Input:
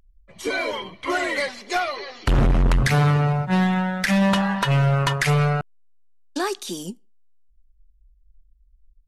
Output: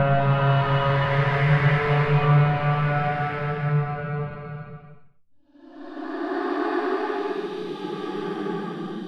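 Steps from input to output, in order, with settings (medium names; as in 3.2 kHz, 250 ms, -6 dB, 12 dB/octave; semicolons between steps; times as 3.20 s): chunks repeated in reverse 201 ms, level -4.5 dB; Paulstretch 4.3×, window 0.50 s, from 4.87 s; distance through air 430 m; trim +1.5 dB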